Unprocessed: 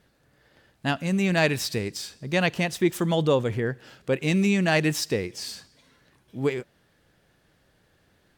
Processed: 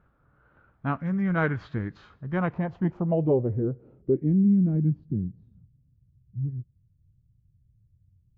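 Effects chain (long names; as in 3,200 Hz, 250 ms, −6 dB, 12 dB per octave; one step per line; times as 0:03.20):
low-shelf EQ 170 Hz +10.5 dB
formants moved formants −3 semitones
low-pass filter sweep 1,300 Hz → 110 Hz, 0:02.19–0:05.98
level −6 dB
Ogg Vorbis 64 kbit/s 16,000 Hz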